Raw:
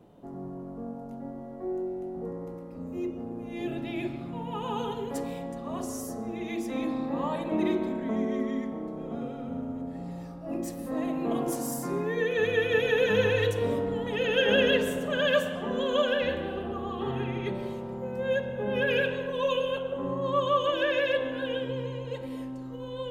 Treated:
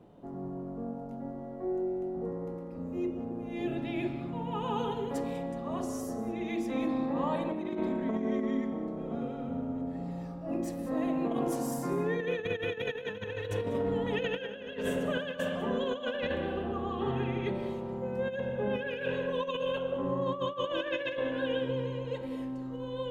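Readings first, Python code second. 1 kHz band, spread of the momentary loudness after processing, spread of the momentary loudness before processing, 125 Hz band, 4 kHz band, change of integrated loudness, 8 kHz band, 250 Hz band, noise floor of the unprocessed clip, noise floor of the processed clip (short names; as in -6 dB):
-3.0 dB, 7 LU, 13 LU, -1.5 dB, -8.0 dB, -4.0 dB, -6.0 dB, -1.0 dB, -40 dBFS, -41 dBFS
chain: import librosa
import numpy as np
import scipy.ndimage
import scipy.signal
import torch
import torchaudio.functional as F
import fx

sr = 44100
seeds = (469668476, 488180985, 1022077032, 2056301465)

p1 = fx.high_shelf(x, sr, hz=5800.0, db=-8.5)
p2 = fx.over_compress(p1, sr, threshold_db=-29.0, ratio=-0.5)
p3 = p2 + fx.echo_single(p2, sr, ms=195, db=-16.5, dry=0)
y = p3 * librosa.db_to_amplitude(-2.0)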